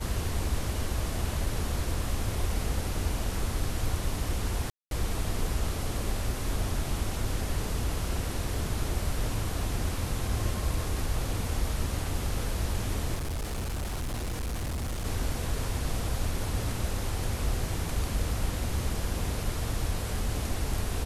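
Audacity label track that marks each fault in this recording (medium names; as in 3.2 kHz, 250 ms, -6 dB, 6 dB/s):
4.700000	4.910000	dropout 212 ms
13.140000	15.060000	clipped -29 dBFS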